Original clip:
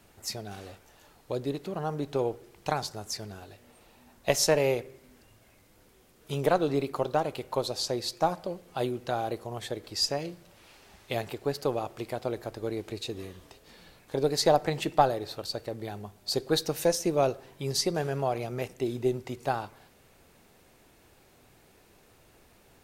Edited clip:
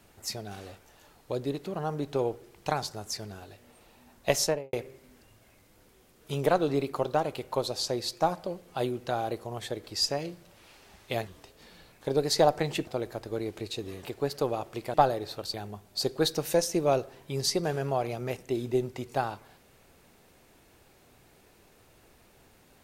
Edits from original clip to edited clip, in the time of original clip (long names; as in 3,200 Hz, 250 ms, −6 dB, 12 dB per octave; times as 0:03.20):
0:04.36–0:04.73: fade out and dull
0:11.27–0:12.18: swap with 0:13.34–0:14.94
0:15.54–0:15.85: remove